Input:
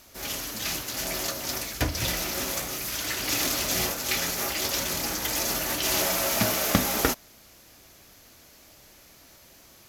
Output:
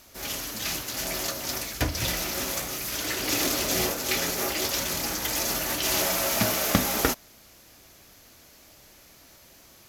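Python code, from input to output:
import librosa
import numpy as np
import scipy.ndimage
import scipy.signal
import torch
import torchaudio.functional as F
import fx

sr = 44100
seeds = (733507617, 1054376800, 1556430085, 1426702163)

y = fx.peak_eq(x, sr, hz=390.0, db=5.5, octaves=1.3, at=(2.91, 4.65))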